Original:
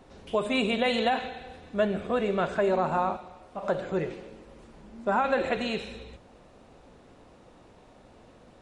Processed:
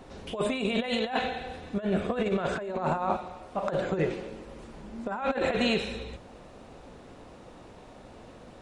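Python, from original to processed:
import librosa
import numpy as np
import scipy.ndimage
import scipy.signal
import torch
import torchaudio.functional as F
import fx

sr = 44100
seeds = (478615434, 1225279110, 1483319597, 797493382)

y = fx.over_compress(x, sr, threshold_db=-29.0, ratio=-0.5)
y = y * 10.0 ** (2.0 / 20.0)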